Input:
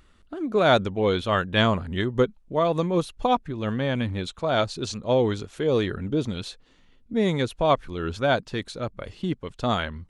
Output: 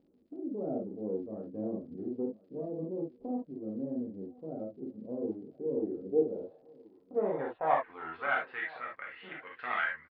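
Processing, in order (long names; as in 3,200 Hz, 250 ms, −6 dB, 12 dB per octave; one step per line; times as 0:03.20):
one-sided soft clipper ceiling −24 dBFS
noise gate with hold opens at −47 dBFS
low-shelf EQ 97 Hz −10.5 dB
upward compression, threshold −30 dBFS
low-pass filter sweep 260 Hz → 2,200 Hz, 0:05.71–0:07.73
reverb whose tail is shaped and stops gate 90 ms flat, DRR −3 dB
band-pass filter sweep 560 Hz → 1,600 Hz, 0:07.23–0:08.67
on a send: repeating echo 1,028 ms, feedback 33%, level −23 dB
on the sum: surface crackle 100 per second −60 dBFS
downsampling to 11,025 Hz
level −4.5 dB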